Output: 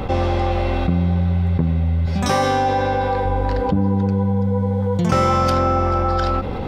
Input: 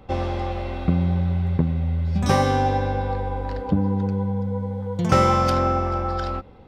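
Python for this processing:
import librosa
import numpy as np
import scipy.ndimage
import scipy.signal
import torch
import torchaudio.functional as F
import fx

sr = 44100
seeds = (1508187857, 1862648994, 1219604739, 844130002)

y = fx.low_shelf(x, sr, hz=220.0, db=-10.5, at=(2.06, 3.25))
y = fx.env_flatten(y, sr, amount_pct=70)
y = y * 10.0 ** (-1.5 / 20.0)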